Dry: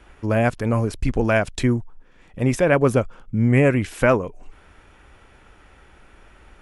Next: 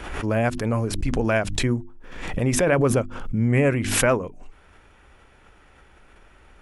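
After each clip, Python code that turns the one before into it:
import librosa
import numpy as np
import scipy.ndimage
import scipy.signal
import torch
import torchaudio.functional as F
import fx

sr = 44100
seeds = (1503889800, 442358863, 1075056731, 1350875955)

y = fx.hum_notches(x, sr, base_hz=50, count=7)
y = fx.pre_swell(y, sr, db_per_s=49.0)
y = y * librosa.db_to_amplitude(-3.0)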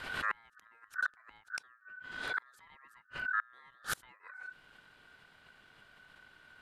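y = fx.gate_flip(x, sr, shuts_db=-14.0, range_db=-32)
y = y * np.sin(2.0 * np.pi * 1500.0 * np.arange(len(y)) / sr)
y = y * librosa.db_to_amplitude(-5.5)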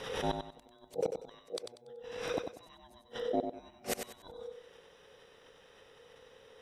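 y = fx.band_invert(x, sr, width_hz=2000)
y = fx.echo_feedback(y, sr, ms=95, feedback_pct=29, wet_db=-7)
y = y * librosa.db_to_amplitude(1.0)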